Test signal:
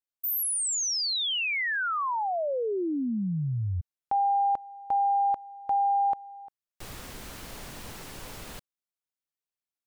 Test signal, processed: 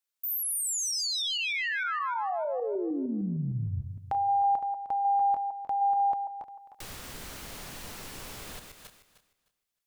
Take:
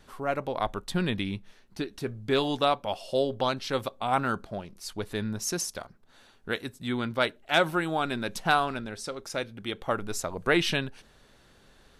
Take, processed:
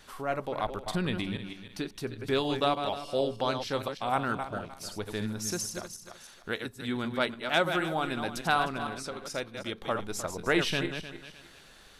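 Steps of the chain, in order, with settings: regenerating reverse delay 0.153 s, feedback 44%, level -7 dB; mismatched tape noise reduction encoder only; gain -3 dB

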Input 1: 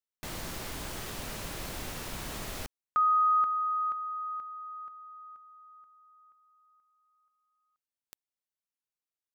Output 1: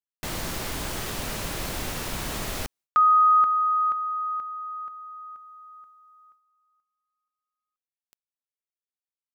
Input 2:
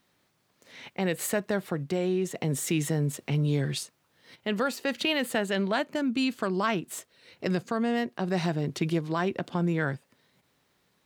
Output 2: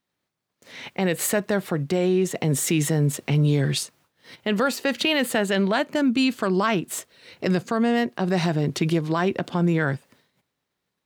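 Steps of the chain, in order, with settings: expander -58 dBFS, range -19 dB; in parallel at +2.5 dB: limiter -21.5 dBFS

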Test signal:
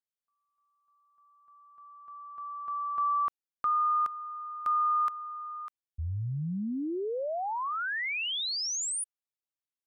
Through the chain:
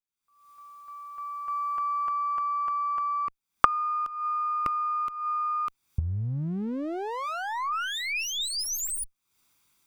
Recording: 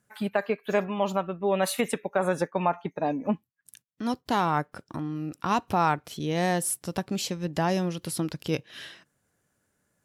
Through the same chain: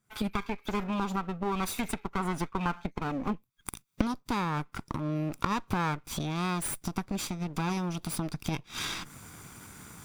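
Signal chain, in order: minimum comb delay 0.83 ms; recorder AGC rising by 66 dB/s, up to +33 dB; gain -5.5 dB

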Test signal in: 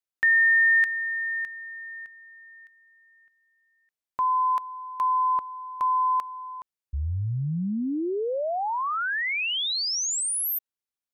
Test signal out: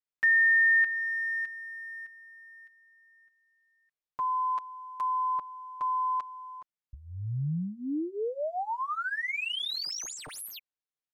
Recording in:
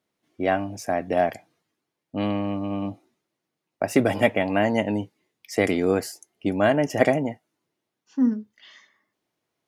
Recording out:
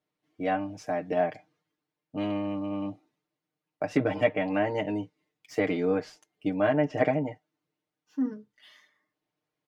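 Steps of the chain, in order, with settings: median filter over 5 samples; comb 6.6 ms, depth 84%; treble ducked by the level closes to 3000 Hz, closed at -14 dBFS; gain -7.5 dB

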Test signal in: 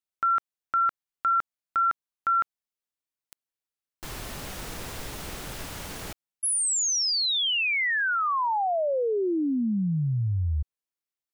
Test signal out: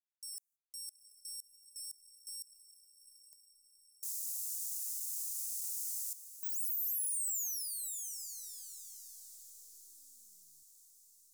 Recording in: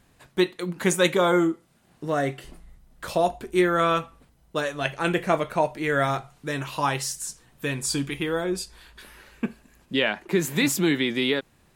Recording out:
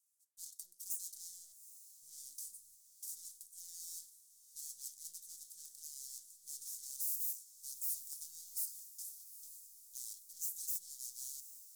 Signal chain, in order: gate -47 dBFS, range -18 dB; full-wave rectifier; reverse; compressor 6:1, threshold -31 dBFS; reverse; soft clip -34.5 dBFS; wow and flutter 26 cents; inverse Chebyshev high-pass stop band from 2700 Hz, stop band 50 dB; diffused feedback echo 0.83 s, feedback 58%, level -13.5 dB; gain +11 dB

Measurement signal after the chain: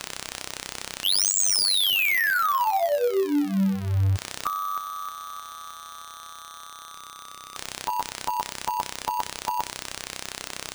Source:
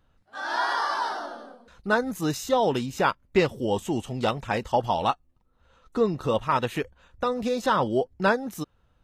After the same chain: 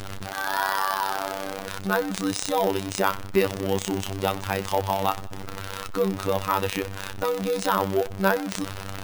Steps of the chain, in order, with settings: zero-crossing step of -26 dBFS; notch 7600 Hz, Q 26; on a send: thinning echo 94 ms, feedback 45%, high-pass 540 Hz, level -19 dB; on the sum: robotiser 96.9 Hz; sample-and-hold 3×

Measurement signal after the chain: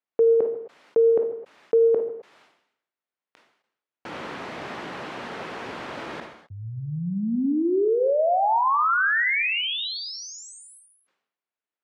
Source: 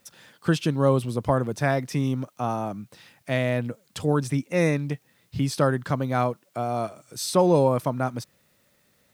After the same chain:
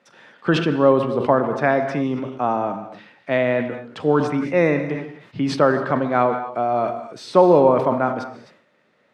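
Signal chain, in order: BPF 250–2300 Hz; non-linear reverb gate 0.28 s flat, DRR 9 dB; sustainer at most 78 dB/s; gain +6.5 dB

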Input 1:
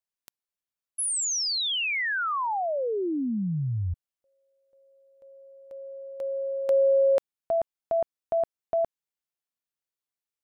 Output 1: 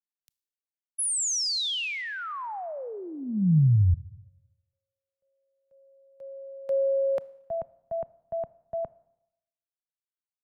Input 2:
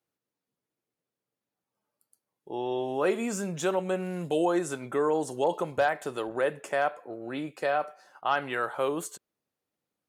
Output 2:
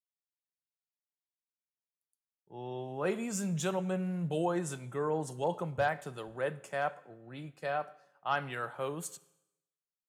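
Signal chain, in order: resonant low shelf 220 Hz +8 dB, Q 1.5; Schroeder reverb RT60 1.5 s, combs from 25 ms, DRR 17.5 dB; three-band expander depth 70%; gain -6 dB

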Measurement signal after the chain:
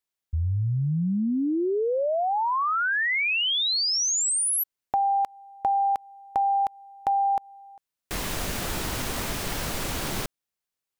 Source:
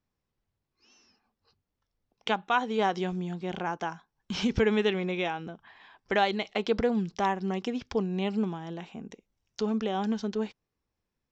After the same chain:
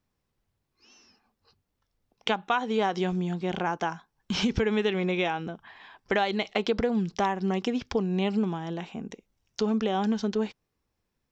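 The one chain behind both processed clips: compressor, threshold -26 dBFS; gain +4.5 dB

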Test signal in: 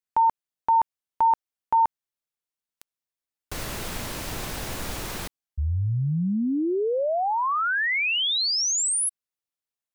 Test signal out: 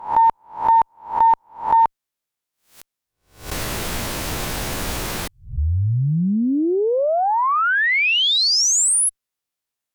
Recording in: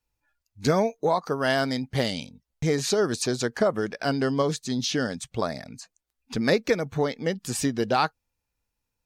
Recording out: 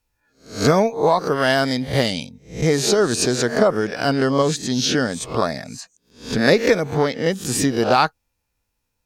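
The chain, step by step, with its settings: spectral swells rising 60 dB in 0.39 s; added harmonics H 6 -38 dB, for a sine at -7.5 dBFS; gain +5.5 dB

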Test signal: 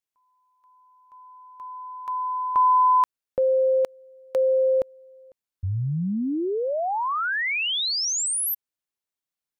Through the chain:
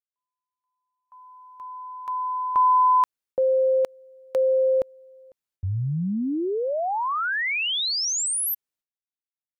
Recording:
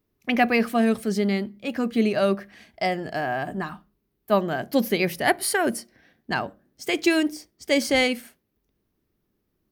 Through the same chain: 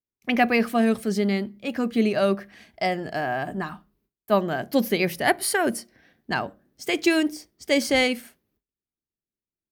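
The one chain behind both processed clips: gate with hold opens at -53 dBFS, hold 0.22 s, range -24 dB

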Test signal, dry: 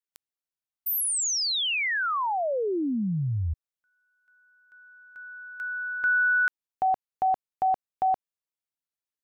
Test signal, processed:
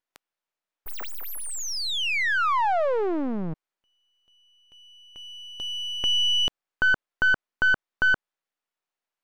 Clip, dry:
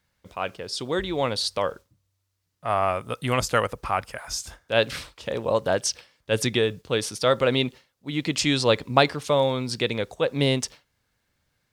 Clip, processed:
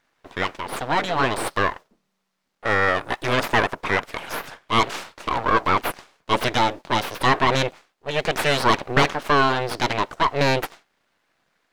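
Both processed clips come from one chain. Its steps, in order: full-wave rectifier; overdrive pedal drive 21 dB, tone 1300 Hz, clips at -2.5 dBFS

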